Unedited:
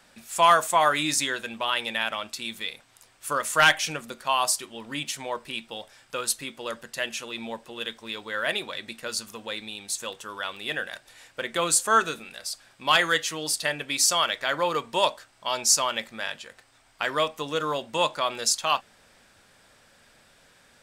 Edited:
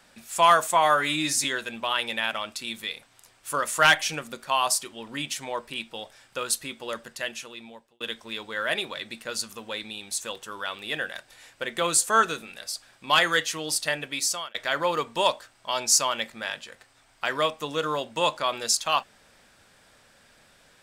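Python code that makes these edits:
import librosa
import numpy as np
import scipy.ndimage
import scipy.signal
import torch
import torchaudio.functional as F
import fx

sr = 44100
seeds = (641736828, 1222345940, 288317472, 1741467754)

y = fx.edit(x, sr, fx.stretch_span(start_s=0.77, length_s=0.45, factor=1.5),
    fx.fade_out_span(start_s=6.82, length_s=0.96),
    fx.fade_out_span(start_s=13.62, length_s=0.7, curve='qsin'), tone=tone)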